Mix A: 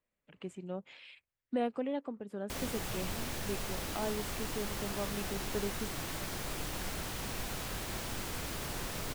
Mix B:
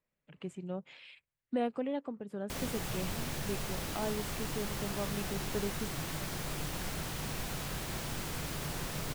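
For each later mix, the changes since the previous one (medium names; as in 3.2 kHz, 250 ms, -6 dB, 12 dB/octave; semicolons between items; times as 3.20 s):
master: add peaking EQ 150 Hz +8.5 dB 0.38 oct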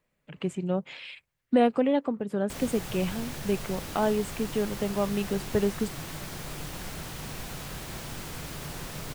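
speech +11.0 dB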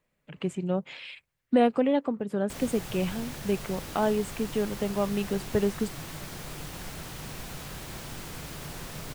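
reverb: off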